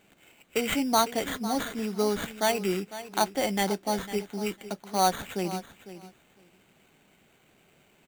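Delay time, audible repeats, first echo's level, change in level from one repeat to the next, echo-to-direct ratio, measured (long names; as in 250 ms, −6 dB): 502 ms, 2, −14.0 dB, −16.5 dB, −14.0 dB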